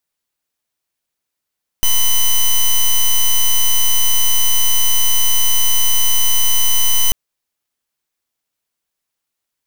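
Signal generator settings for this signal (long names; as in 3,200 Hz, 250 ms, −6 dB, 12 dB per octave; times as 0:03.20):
pulse wave 3,010 Hz, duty 8% −11 dBFS 5.29 s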